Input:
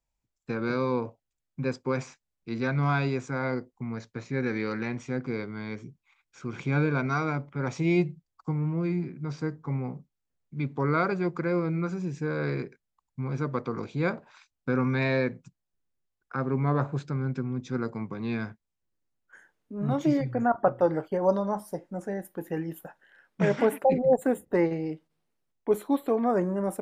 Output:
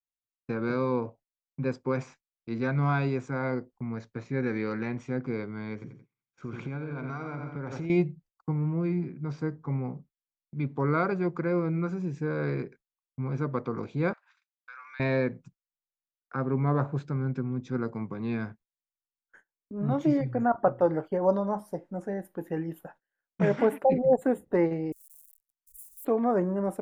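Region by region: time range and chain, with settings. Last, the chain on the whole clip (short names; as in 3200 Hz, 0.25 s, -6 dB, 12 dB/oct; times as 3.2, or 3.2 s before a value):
5.73–7.9 high shelf 8300 Hz -8 dB + feedback echo 87 ms, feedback 43%, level -8 dB + compressor 16:1, threshold -30 dBFS
14.13–15 HPF 1300 Hz 24 dB/oct + compressor 2:1, threshold -44 dBFS
24.92–26.05 switching spikes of -28.5 dBFS + inverse Chebyshev band-stop 150–2100 Hz, stop band 70 dB + core saturation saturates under 1300 Hz
whole clip: gate -52 dBFS, range -27 dB; high shelf 2700 Hz -9 dB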